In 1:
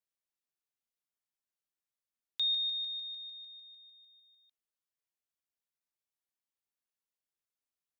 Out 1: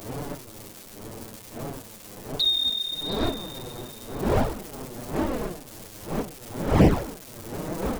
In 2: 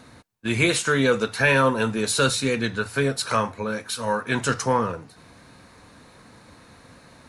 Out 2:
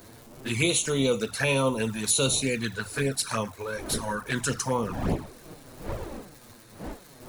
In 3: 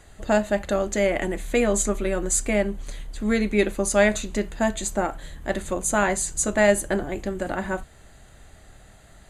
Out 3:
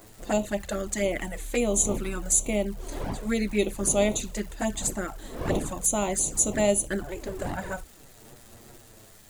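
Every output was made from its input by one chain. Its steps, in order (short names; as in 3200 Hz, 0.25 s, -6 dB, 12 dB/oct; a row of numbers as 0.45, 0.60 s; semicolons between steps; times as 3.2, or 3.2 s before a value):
wind noise 470 Hz -34 dBFS; crackle 390/s -39 dBFS; high shelf 5900 Hz +11.5 dB; envelope flanger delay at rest 11.4 ms, full sweep at -16.5 dBFS; match loudness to -27 LUFS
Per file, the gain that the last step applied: +7.5, -3.5, -3.5 dB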